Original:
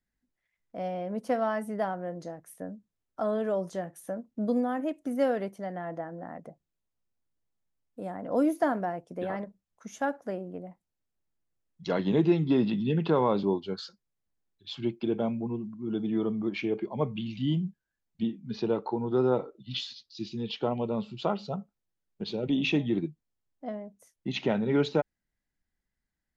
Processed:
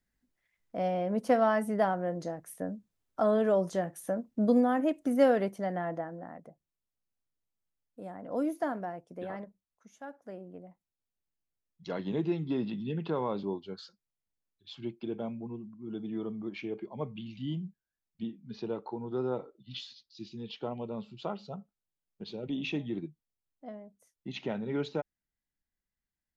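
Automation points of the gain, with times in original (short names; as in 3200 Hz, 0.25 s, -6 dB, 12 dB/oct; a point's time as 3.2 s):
5.81 s +3 dB
6.44 s -6 dB
9.43 s -6 dB
10 s -16 dB
10.43 s -7.5 dB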